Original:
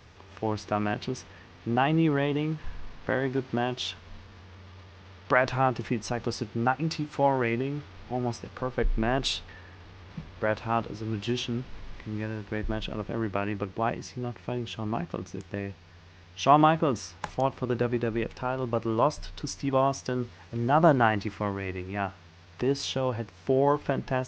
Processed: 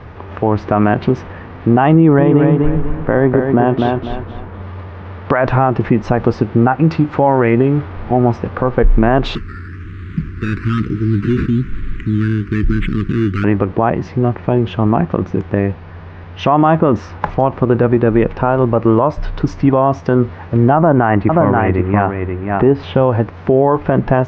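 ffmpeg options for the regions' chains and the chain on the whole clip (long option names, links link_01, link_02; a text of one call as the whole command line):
ffmpeg -i in.wav -filter_complex "[0:a]asettb=1/sr,asplit=3[link_01][link_02][link_03];[link_01]atrim=end=1.944[link_04];[link_02]atrim=start=1.94:end=4.62,asetpts=PTS-STARTPTS,afade=type=in:duration=0.004:curve=qsin,afade=type=out:start_time=2.676:duration=0.004:curve=qsin,highshelf=frequency=2800:gain=-11,aecho=1:1:248|496|744|992:0.501|0.15|0.0451|0.0135,atrim=end_sample=118188[link_05];[link_03]atrim=start=4.616[link_06];[link_04][link_05]acrossfade=duration=0.004:curve1=hsin:curve2=qsin[link_07];[link_07][link_06]acrossfade=duration=0.004:curve1=qsin:curve2=hsin,asettb=1/sr,asplit=3[link_08][link_09][link_10];[link_08]atrim=end=9.354[link_11];[link_09]atrim=start=9.35:end=13.44,asetpts=PTS-STARTPTS,afade=type=in:duration=0.004:curve=qsin,afade=type=out:start_time=4.086:duration=0.004:curve=qsin,acrusher=samples=11:mix=1:aa=0.000001:lfo=1:lforange=6.6:lforate=1.1,asoftclip=type=hard:threshold=-28.5dB,asuperstop=centerf=690:order=8:qfactor=0.74[link_12];[link_10]atrim=start=13.436[link_13];[link_11][link_12]acrossfade=duration=0.004:curve1=hsin:curve2=qsin[link_14];[link_14][link_13]acrossfade=duration=0.004:curve1=qsin:curve2=hsin,asettb=1/sr,asplit=3[link_15][link_16][link_17];[link_15]atrim=end=20.764[link_18];[link_16]atrim=start=20.76:end=22.95,asetpts=PTS-STARTPTS,afade=type=in:duration=0.004:curve=qsin,afade=type=out:start_time=2.186:duration=0.004:curve=qsin,lowpass=2900,aecho=1:1:531:0.473,atrim=end_sample=96579[link_19];[link_17]atrim=start=22.946[link_20];[link_18][link_19]acrossfade=duration=0.004:curve1=hsin:curve2=qsin[link_21];[link_21][link_20]acrossfade=duration=0.004:curve1=qsin:curve2=hsin,lowpass=1500,acompressor=threshold=-30dB:ratio=1.5,alimiter=level_in=21dB:limit=-1dB:release=50:level=0:latency=1,volume=-1dB" out.wav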